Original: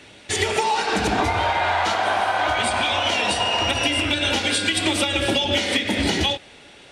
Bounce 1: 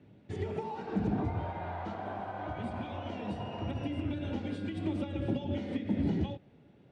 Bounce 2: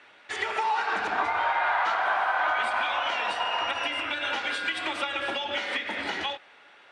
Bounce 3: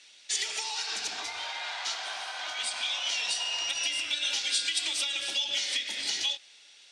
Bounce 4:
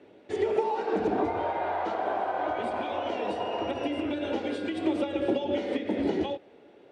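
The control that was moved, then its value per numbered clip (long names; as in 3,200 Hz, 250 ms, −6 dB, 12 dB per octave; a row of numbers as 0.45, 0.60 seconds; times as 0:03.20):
resonant band-pass, frequency: 150, 1,300, 5,500, 400 Hertz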